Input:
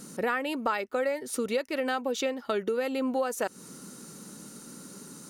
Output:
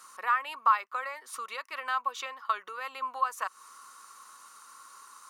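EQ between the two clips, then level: resonant high-pass 1100 Hz, resonance Q 13; bell 2500 Hz +3.5 dB 1.4 oct; -7.5 dB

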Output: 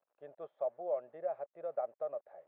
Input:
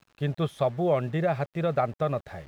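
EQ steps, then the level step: ladder band-pass 660 Hz, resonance 60%; air absorption 82 m; -5.5 dB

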